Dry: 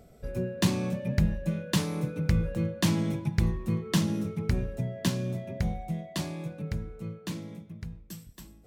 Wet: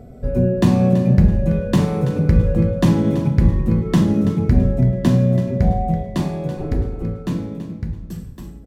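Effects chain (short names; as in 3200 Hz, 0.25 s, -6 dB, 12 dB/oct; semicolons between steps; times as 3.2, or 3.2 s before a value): 6.57–7.03 minimum comb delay 2.4 ms; tilt shelf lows +8 dB, about 1300 Hz; in parallel at 0 dB: limiter -15 dBFS, peak gain reduction 9.5 dB; on the sum: feedback echo 0.331 s, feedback 28%, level -12.5 dB; reverb RT60 0.70 s, pre-delay 4 ms, DRR 4 dB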